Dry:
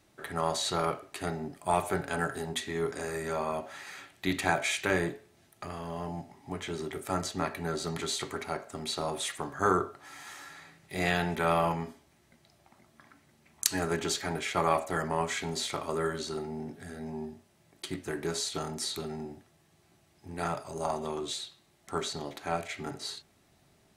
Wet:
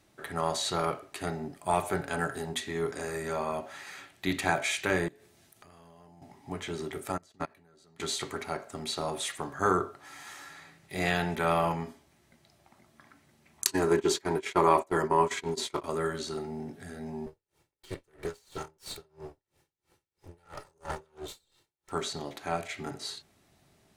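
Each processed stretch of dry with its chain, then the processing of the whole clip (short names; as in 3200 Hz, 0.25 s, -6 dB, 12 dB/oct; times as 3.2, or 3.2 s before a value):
5.08–6.22 high shelf 3900 Hz +6.5 dB + compressor 8:1, threshold -52 dBFS
7.12–8 level quantiser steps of 15 dB + upward expander 2.5:1, over -40 dBFS
13.65–15.84 gate -35 dBFS, range -22 dB + small resonant body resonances 370/970 Hz, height 12 dB, ringing for 35 ms
17.26–21.92 minimum comb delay 2.2 ms + dB-linear tremolo 3 Hz, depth 32 dB
whole clip: dry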